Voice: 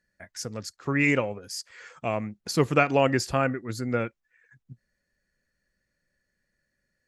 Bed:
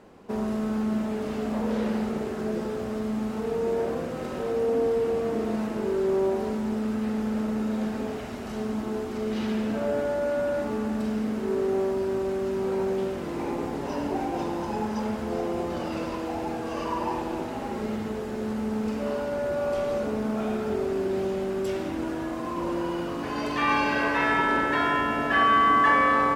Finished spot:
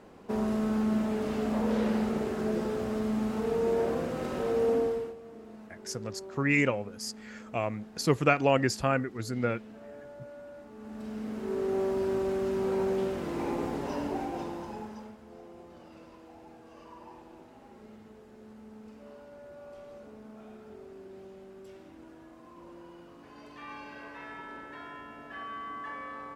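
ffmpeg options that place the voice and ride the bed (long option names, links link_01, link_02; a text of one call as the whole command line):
ffmpeg -i stem1.wav -i stem2.wav -filter_complex "[0:a]adelay=5500,volume=-2.5dB[link_01];[1:a]volume=17dB,afade=type=out:start_time=4.7:duration=0.45:silence=0.112202,afade=type=in:start_time=10.74:duration=1.32:silence=0.125893,afade=type=out:start_time=13.71:duration=1.45:silence=0.11885[link_02];[link_01][link_02]amix=inputs=2:normalize=0" out.wav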